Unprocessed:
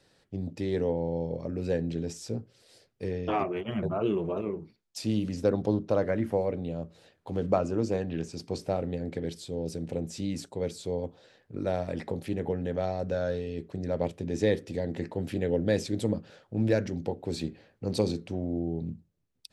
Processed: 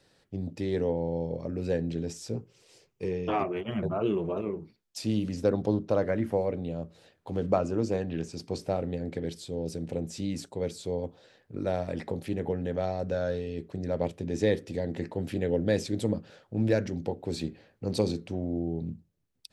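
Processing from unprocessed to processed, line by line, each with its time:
2.35–3.29 s: rippled EQ curve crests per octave 0.74, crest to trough 7 dB

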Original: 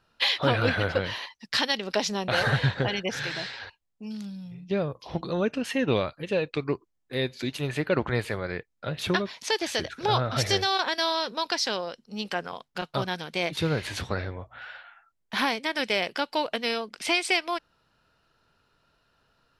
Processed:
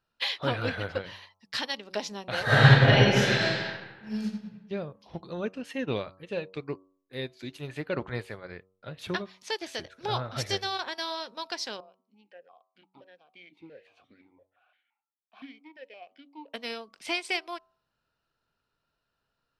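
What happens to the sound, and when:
2.44–4.22 s: reverb throw, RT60 1.7 s, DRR -10.5 dB
11.80–16.54 s: stepped vowel filter 5.8 Hz
whole clip: de-hum 94.14 Hz, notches 14; upward expansion 1.5:1, over -37 dBFS

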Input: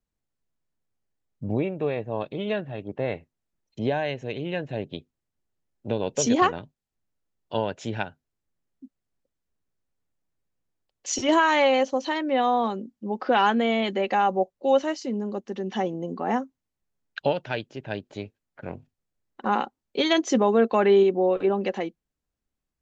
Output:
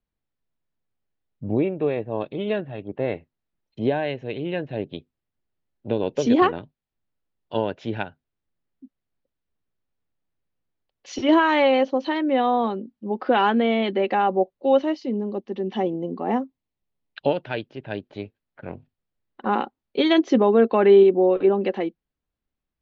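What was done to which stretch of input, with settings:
14.81–17.29 s: peaking EQ 1.5 kHz -7 dB 0.48 oct
whole clip: low-pass 4.3 kHz 24 dB/octave; dynamic bell 330 Hz, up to +6 dB, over -35 dBFS, Q 1.3

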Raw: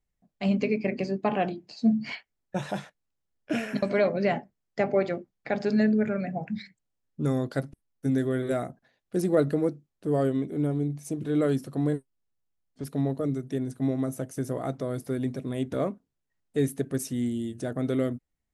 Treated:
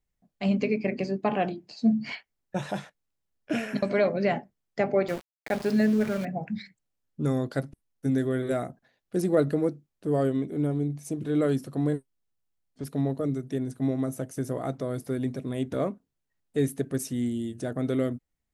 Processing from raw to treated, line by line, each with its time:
5.08–6.25 s: small samples zeroed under -36 dBFS

